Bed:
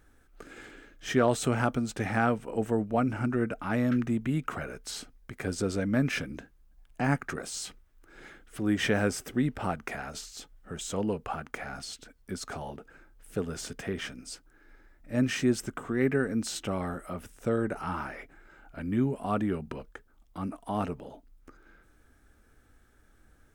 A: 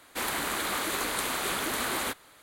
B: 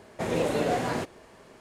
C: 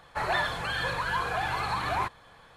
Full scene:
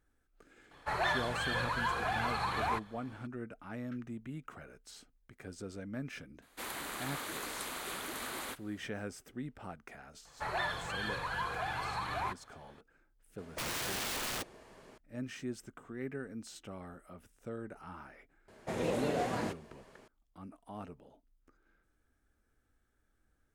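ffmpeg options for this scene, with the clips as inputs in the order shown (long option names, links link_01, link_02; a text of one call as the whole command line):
ffmpeg -i bed.wav -i cue0.wav -i cue1.wav -i cue2.wav -filter_complex "[3:a]asplit=2[link_01][link_02];[2:a]asplit=2[link_03][link_04];[0:a]volume=-14.5dB[link_05];[link_03]aeval=exprs='(mod(25.1*val(0)+1,2)-1)/25.1':channel_layout=same[link_06];[link_01]atrim=end=2.56,asetpts=PTS-STARTPTS,volume=-4.5dB,afade=type=in:duration=0.004:curve=hsin,afade=type=out:start_time=2.556:duration=0.004:curve=hsin,adelay=710[link_07];[1:a]atrim=end=2.42,asetpts=PTS-STARTPTS,volume=-10.5dB,afade=type=in:duration=0.004:curve=hsin,afade=type=out:start_time=2.416:duration=0.004:curve=hsin,adelay=283122S[link_08];[link_02]atrim=end=2.56,asetpts=PTS-STARTPTS,volume=-7.5dB,afade=type=in:duration=0.004:curve=hsin,afade=type=out:start_time=2.556:duration=0.004:curve=hsin,adelay=10250[link_09];[link_06]atrim=end=1.6,asetpts=PTS-STARTPTS,volume=-4.5dB,afade=type=in:duration=0.004:curve=hsin,afade=type=out:start_time=1.596:duration=0.004:curve=hsin,adelay=13380[link_10];[link_04]atrim=end=1.6,asetpts=PTS-STARTPTS,volume=-7dB,afade=type=in:duration=0.004:curve=hsin,afade=type=out:start_time=1.596:duration=0.004:curve=hsin,adelay=18480[link_11];[link_05][link_07][link_08][link_09][link_10][link_11]amix=inputs=6:normalize=0" out.wav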